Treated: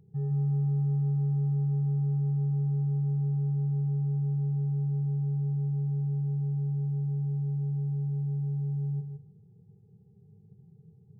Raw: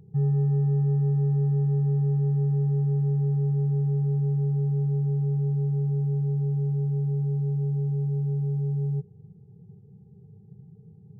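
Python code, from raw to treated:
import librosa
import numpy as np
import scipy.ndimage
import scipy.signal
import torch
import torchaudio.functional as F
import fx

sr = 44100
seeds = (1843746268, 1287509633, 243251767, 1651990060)

y = fx.echo_feedback(x, sr, ms=161, feedback_pct=17, wet_db=-6.0)
y = F.gain(torch.from_numpy(y), -7.5).numpy()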